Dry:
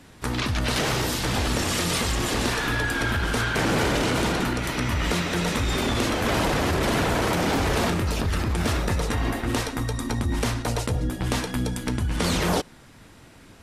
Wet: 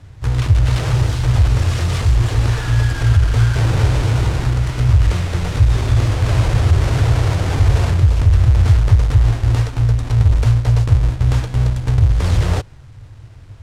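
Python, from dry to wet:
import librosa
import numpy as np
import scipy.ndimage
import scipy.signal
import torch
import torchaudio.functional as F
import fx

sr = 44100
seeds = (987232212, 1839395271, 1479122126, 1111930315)

y = fx.halfwave_hold(x, sr)
y = scipy.signal.sosfilt(scipy.signal.butter(2, 8400.0, 'lowpass', fs=sr, output='sos'), y)
y = fx.low_shelf_res(y, sr, hz=150.0, db=10.5, q=3.0)
y = y * 10.0 ** (-5.0 / 20.0)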